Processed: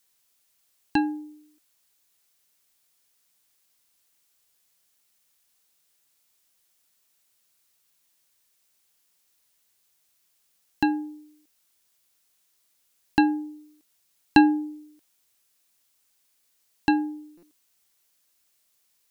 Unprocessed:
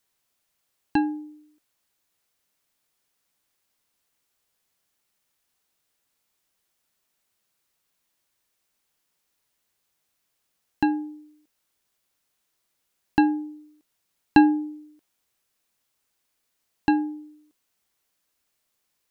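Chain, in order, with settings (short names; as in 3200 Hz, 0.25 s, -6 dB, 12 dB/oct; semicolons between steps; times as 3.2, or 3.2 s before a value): high shelf 2800 Hz +9 dB; stuck buffer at 17.37, samples 256, times 9; gain -1 dB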